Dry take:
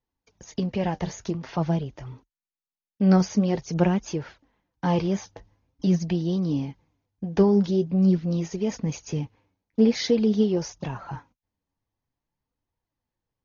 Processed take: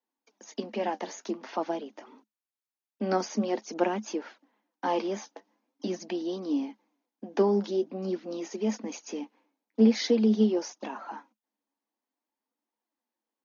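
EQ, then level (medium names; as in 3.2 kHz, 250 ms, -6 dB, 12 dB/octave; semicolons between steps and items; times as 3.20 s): rippled Chebyshev high-pass 210 Hz, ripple 3 dB; 0.0 dB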